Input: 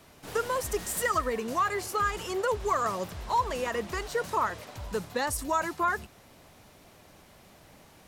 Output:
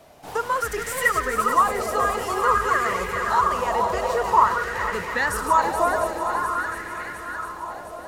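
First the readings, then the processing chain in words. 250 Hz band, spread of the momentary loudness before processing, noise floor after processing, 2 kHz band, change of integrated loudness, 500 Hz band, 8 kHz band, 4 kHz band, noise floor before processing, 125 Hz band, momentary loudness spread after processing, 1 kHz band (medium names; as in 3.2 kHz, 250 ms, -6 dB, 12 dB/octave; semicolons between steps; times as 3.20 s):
+3.5 dB, 6 LU, -37 dBFS, +10.0 dB, +7.5 dB, +6.0 dB, +3.0 dB, +4.0 dB, -56 dBFS, +3.5 dB, 12 LU, +10.0 dB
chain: backward echo that repeats 258 ms, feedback 62%, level -6 dB; shuffle delay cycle 706 ms, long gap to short 1.5:1, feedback 59%, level -8 dB; sweeping bell 0.5 Hz 640–2100 Hz +13 dB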